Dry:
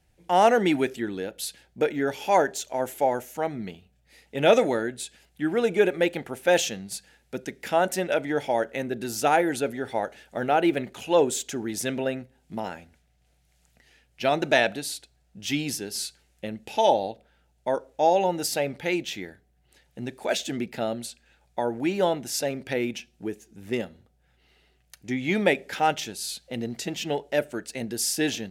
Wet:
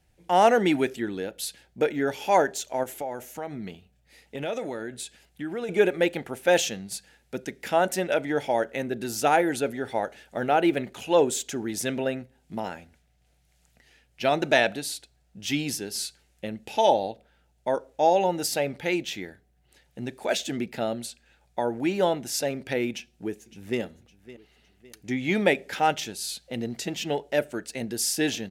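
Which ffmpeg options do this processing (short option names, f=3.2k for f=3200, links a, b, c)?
-filter_complex "[0:a]asettb=1/sr,asplit=3[a][b][c];[a]atrim=end=2.834[d];[b]atrim=start=2.83:end=5.69,asetpts=PTS-STARTPTS,afade=t=in:d=0.004:c=qsin,afade=t=out:st=2.856:d=0.004:c=qsin,acompressor=threshold=-31dB:ratio=3:attack=3.2:release=140:knee=1:detection=peak[e];[c]atrim=start=5.686[f];[d][e]acrossfade=d=0.004:c1=hsin:c2=qsin[g];[g][f]acrossfade=d=0.004:c1=qsin:c2=hsin,asplit=2[h][i];[i]afade=t=in:st=22.9:d=0.01,afade=t=out:st=23.8:d=0.01,aecho=0:1:560|1120|1680|2240:0.133352|0.0600085|0.0270038|0.0121517[j];[h][j]amix=inputs=2:normalize=0"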